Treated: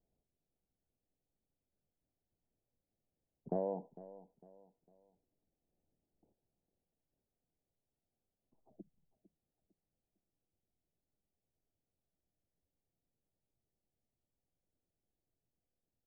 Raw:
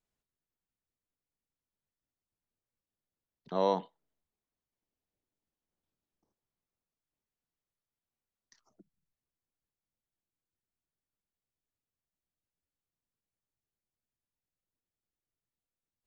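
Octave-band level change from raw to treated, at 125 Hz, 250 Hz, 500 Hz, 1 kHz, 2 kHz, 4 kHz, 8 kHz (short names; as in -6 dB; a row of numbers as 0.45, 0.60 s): -3.0 dB, -4.5 dB, -7.0 dB, -13.0 dB, under -20 dB, under -25 dB, n/a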